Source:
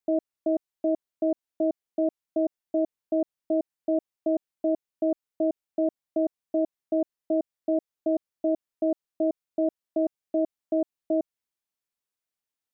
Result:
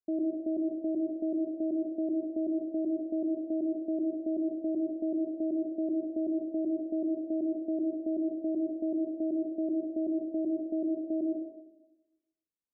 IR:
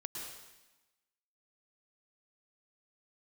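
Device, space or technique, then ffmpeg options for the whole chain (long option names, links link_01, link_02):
next room: -filter_complex "[0:a]lowpass=frequency=480:width=0.5412,lowpass=frequency=480:width=1.3066[link_01];[1:a]atrim=start_sample=2205[link_02];[link_01][link_02]afir=irnorm=-1:irlink=0"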